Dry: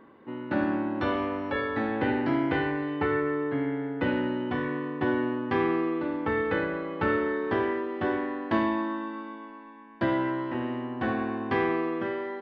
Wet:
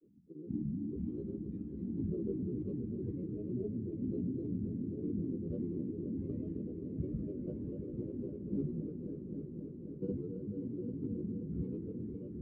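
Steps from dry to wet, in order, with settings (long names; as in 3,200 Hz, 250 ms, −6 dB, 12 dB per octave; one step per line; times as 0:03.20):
inverse Chebyshev low-pass filter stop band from 520 Hz, stop band 40 dB
granular cloud, pitch spread up and down by 7 semitones
echo machine with several playback heads 264 ms, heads all three, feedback 75%, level −12.5 dB
level −3.5 dB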